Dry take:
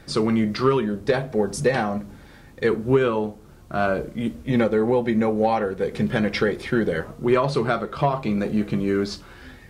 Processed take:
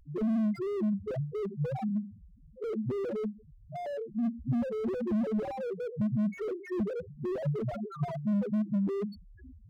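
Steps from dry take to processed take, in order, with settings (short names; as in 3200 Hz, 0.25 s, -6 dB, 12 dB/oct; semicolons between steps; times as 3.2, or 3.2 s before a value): low-pass opened by the level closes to 1700 Hz, open at -15 dBFS; loudest bins only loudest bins 1; slew limiter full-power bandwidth 7.7 Hz; gain +3 dB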